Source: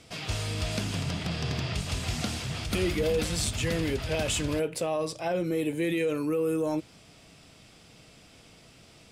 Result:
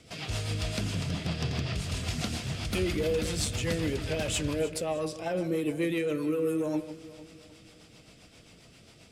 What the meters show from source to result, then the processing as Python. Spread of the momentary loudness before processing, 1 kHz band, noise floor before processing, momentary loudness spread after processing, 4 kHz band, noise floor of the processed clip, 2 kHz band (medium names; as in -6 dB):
5 LU, -3.0 dB, -55 dBFS, 5 LU, -2.0 dB, -56 dBFS, -2.0 dB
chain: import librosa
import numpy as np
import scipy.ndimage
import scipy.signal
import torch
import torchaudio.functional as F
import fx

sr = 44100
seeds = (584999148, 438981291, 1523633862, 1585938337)

y = fx.cheby_harmonics(x, sr, harmonics=(5,), levels_db=(-31,), full_scale_db=-19.0)
y = fx.rotary(y, sr, hz=7.5)
y = fx.echo_alternate(y, sr, ms=153, hz=1800.0, feedback_pct=68, wet_db=-13)